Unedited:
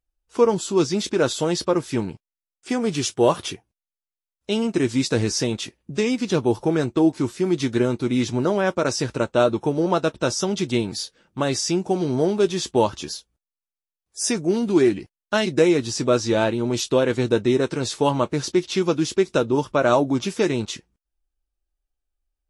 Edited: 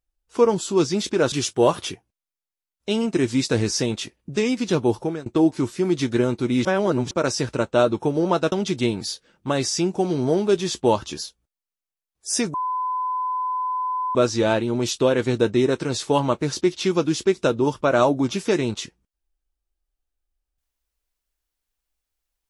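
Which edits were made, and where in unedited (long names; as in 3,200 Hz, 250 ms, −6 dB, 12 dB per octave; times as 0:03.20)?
0:01.32–0:02.93: remove
0:06.55–0:06.87: fade out, to −24 dB
0:08.26–0:08.72: reverse
0:10.13–0:10.43: remove
0:14.45–0:16.06: beep over 1,010 Hz −22 dBFS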